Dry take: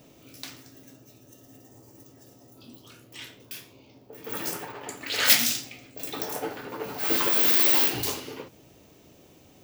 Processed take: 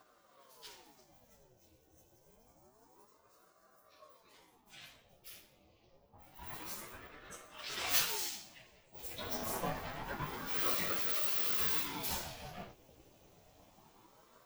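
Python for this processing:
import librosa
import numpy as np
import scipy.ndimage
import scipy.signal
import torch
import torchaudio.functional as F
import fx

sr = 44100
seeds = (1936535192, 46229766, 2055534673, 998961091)

y = fx.rider(x, sr, range_db=5, speed_s=0.5)
y = fx.stretch_vocoder_free(y, sr, factor=1.5)
y = fx.ring_lfo(y, sr, carrier_hz=550.0, swing_pct=65, hz=0.27)
y = F.gain(torch.from_numpy(y), -3.5).numpy()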